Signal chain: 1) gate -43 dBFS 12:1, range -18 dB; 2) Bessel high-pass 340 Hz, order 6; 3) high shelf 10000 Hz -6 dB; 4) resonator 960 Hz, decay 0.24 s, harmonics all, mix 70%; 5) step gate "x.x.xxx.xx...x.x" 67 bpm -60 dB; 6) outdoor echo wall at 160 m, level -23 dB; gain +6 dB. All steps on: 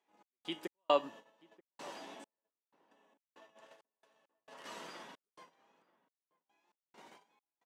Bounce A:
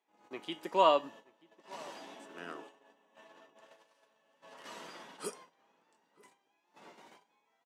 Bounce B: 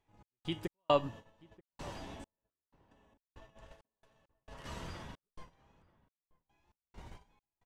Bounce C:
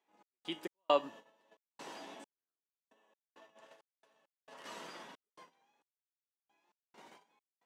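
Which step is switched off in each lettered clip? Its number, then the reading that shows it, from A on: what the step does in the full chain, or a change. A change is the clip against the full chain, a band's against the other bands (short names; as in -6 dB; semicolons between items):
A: 5, 1 kHz band +3.5 dB; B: 2, 125 Hz band +18.5 dB; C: 6, echo-to-direct -26.0 dB to none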